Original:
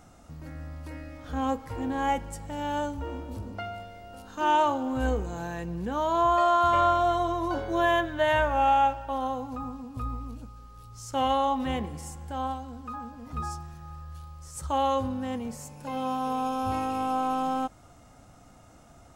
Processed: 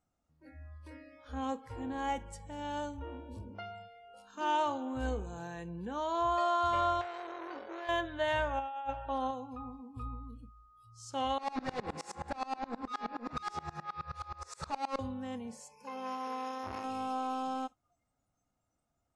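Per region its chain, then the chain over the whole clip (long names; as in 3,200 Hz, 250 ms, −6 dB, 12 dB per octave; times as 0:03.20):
0:07.01–0:07.89: high-pass filter 64 Hz + downward compressor 20 to 1, threshold −26 dBFS + saturating transformer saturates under 1,400 Hz
0:08.59–0:09.31: high-shelf EQ 3,100 Hz −4 dB + compressor whose output falls as the input rises −26 dBFS, ratio −0.5
0:11.38–0:14.99: mid-hump overdrive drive 37 dB, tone 1,400 Hz, clips at −14.5 dBFS + notch filter 3,100 Hz, Q 6.5 + tremolo with a ramp in dB swelling 9.5 Hz, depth 27 dB
0:15.71–0:16.84: EQ curve with evenly spaced ripples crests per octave 0.82, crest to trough 8 dB + saturating transformer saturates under 780 Hz
whole clip: low-pass filter 10,000 Hz 24 dB per octave; noise reduction from a noise print of the clip's start 21 dB; dynamic equaliser 4,500 Hz, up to +6 dB, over −51 dBFS, Q 1.6; level −8 dB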